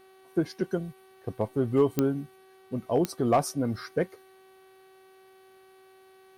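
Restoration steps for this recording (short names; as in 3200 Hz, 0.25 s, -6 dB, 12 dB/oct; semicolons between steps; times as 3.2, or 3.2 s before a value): clip repair -14.5 dBFS; de-click; de-hum 379.9 Hz, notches 12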